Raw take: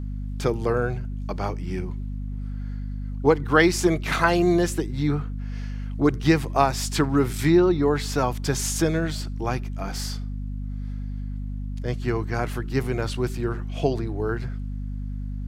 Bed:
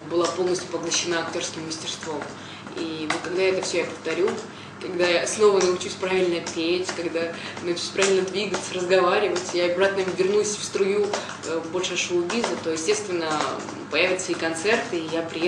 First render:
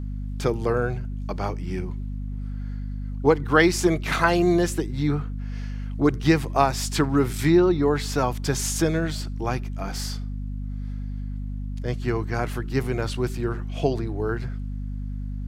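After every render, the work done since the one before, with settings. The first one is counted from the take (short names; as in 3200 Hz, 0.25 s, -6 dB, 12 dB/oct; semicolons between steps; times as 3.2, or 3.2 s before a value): nothing audible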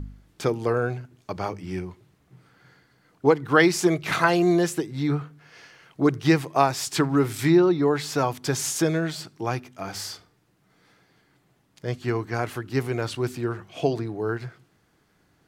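de-hum 50 Hz, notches 5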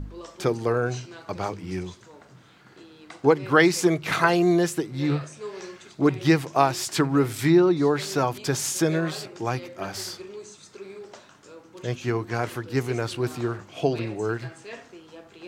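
add bed -19 dB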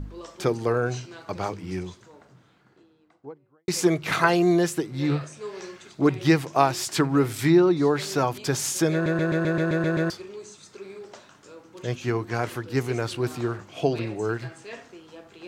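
1.56–3.68 studio fade out; 8.93 stutter in place 0.13 s, 9 plays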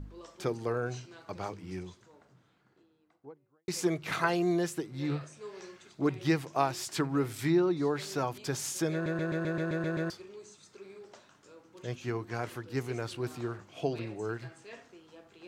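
gain -8.5 dB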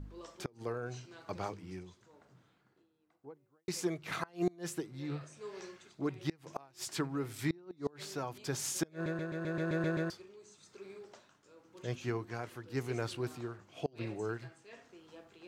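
tremolo triangle 0.94 Hz, depth 60%; flipped gate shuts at -21 dBFS, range -29 dB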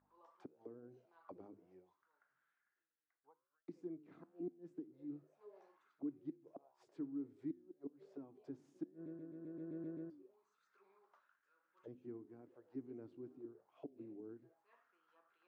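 flange 1.1 Hz, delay 9.8 ms, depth 5.9 ms, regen -90%; auto-wah 280–1800 Hz, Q 4.6, down, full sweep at -41 dBFS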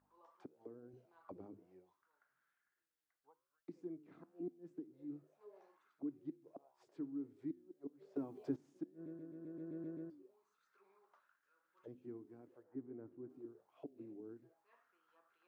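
0.93–1.63 low shelf 230 Hz +8.5 dB; 8.16–8.56 gain +10 dB; 12.63–13.3 steep low-pass 2000 Hz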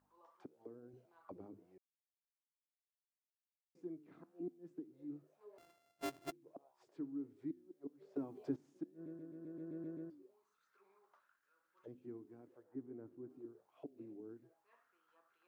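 1.78–3.75 mute; 5.58–6.32 sample sorter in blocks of 64 samples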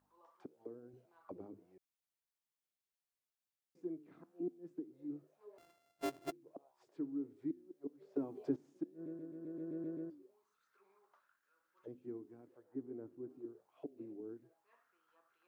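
dynamic EQ 440 Hz, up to +5 dB, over -55 dBFS, Q 0.88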